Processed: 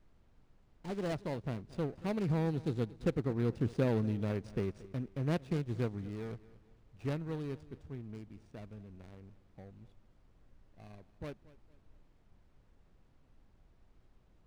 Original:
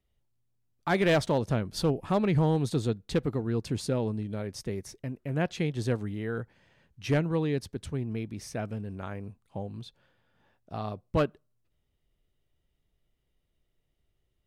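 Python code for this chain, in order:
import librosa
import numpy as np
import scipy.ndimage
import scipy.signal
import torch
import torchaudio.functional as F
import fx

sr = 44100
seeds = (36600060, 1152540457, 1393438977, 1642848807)

p1 = scipy.signal.medfilt(x, 41)
p2 = fx.doppler_pass(p1, sr, speed_mps=10, closest_m=9.6, pass_at_s=4.27)
p3 = fx.high_shelf(p2, sr, hz=3900.0, db=8.5)
p4 = fx.dmg_noise_colour(p3, sr, seeds[0], colour='brown', level_db=-62.0)
p5 = p4 + fx.echo_feedback(p4, sr, ms=229, feedback_pct=37, wet_db=-19.5, dry=0)
y = np.interp(np.arange(len(p5)), np.arange(len(p5))[::3], p5[::3])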